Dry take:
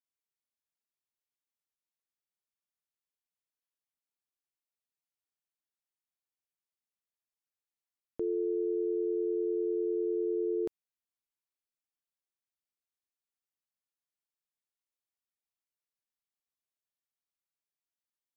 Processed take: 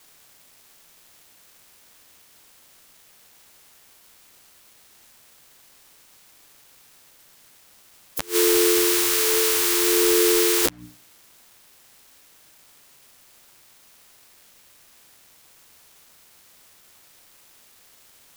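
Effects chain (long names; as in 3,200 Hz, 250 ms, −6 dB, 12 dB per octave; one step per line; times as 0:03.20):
compressing power law on the bin magnitudes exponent 0.24
mains-hum notches 60/120/180/240/300 Hz
compressor whose output falls as the input rises −41 dBFS, ratio −0.5
gate with flip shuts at −25 dBFS, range −26 dB
flanger 0.16 Hz, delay 6.3 ms, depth 6.9 ms, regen +4%
log-companded quantiser 8 bits
boost into a limiter +30 dB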